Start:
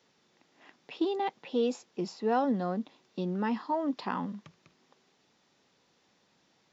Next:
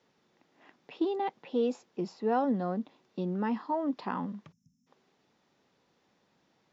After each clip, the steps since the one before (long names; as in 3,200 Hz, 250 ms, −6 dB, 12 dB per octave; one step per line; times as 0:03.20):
high-shelf EQ 2,600 Hz −8.5 dB
time-frequency box erased 0:04.52–0:04.87, 270–5,100 Hz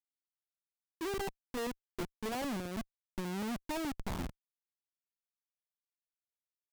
comparator with hysteresis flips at −32.5 dBFS
expander for the loud parts 2.5 to 1, over −46 dBFS
level +1 dB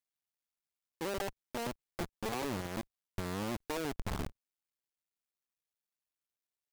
sub-harmonics by changed cycles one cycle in 2, muted
level +3 dB